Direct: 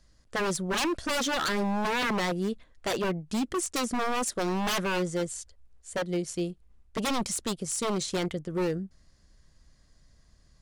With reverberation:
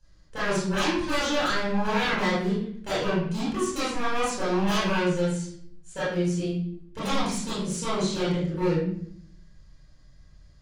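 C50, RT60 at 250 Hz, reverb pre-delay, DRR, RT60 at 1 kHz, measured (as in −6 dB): 0.0 dB, 0.95 s, 23 ms, −11.0 dB, 0.55 s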